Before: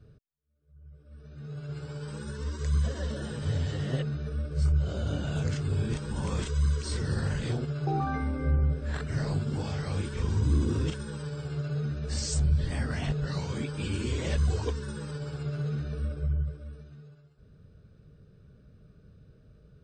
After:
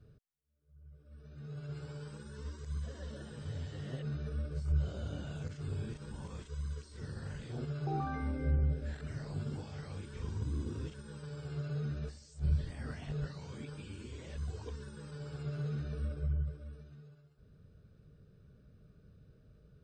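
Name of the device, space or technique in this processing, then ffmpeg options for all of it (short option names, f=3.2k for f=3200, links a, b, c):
de-esser from a sidechain: -filter_complex "[0:a]asettb=1/sr,asplit=3[a][b][c];[a]atrim=end=8.324[d];[b]atrim=start=8.32:end=9.01,asetpts=PTS-STARTPTS,afade=t=in:d=0.004:c=qsin,afade=t=out:st=0.686:d=0.004:c=qsin,equalizer=f=1.1k:w=4.4:g=-12.5[e];[c]atrim=start=9.006[f];[d][e]acrossfade=d=0.004:c1=hsin:c2=qsin[g];[g][f]acrossfade=d=0.004:c1=qsin:c2=hsin,asplit=2[h][i];[i]highpass=5.3k,apad=whole_len=874669[j];[h][j]sidechaincompress=threshold=-58dB:ratio=6:attack=2.9:release=49,volume=-5dB"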